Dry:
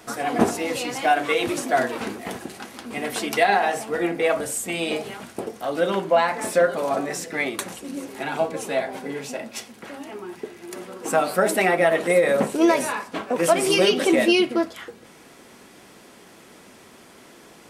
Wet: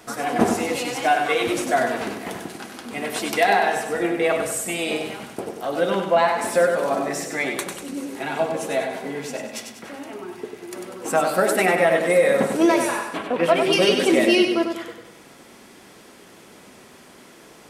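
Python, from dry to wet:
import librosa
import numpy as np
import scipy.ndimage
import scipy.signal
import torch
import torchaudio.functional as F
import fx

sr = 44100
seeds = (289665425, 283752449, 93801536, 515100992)

p1 = fx.high_shelf_res(x, sr, hz=4800.0, db=-13.0, q=1.5, at=(13.17, 13.73))
y = p1 + fx.echo_feedback(p1, sr, ms=97, feedback_pct=44, wet_db=-6, dry=0)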